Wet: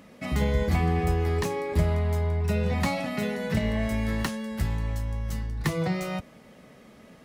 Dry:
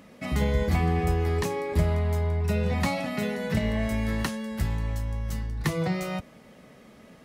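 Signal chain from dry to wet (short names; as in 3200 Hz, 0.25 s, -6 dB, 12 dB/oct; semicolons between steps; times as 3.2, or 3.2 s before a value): tracing distortion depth 0.031 ms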